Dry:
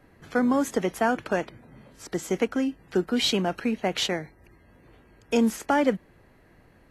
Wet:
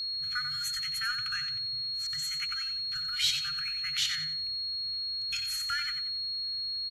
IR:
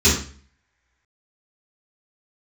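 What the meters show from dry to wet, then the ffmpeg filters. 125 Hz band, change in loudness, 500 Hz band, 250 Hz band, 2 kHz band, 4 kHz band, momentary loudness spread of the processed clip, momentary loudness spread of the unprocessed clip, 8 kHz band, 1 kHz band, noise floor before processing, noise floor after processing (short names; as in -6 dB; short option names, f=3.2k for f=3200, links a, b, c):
-14.5 dB, -4.0 dB, under -40 dB, under -35 dB, -2.5 dB, +6.0 dB, 4 LU, 11 LU, -1.0 dB, -13.5 dB, -58 dBFS, -35 dBFS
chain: -af "highshelf=f=7.6k:g=4,aecho=1:1:91|182|273|364:0.376|0.117|0.0361|0.0112,aeval=exprs='val(0)+0.0398*sin(2*PI*4300*n/s)':c=same,afftfilt=real='re*(1-between(b*sr/4096,160,1200))':imag='im*(1-between(b*sr/4096,160,1200))':win_size=4096:overlap=0.75,volume=-3.5dB"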